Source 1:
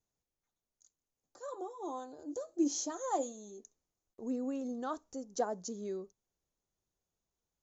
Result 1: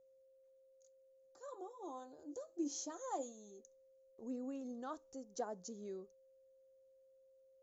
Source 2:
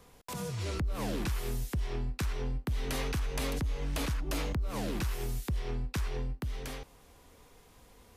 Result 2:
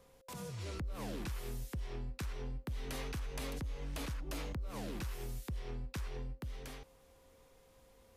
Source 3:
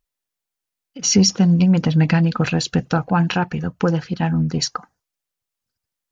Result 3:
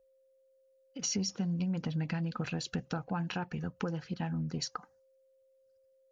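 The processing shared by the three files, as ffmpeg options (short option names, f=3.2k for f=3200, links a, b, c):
-af "acompressor=threshold=-27dB:ratio=3,aeval=exprs='val(0)+0.00126*sin(2*PI*530*n/s)':c=same,volume=-7.5dB"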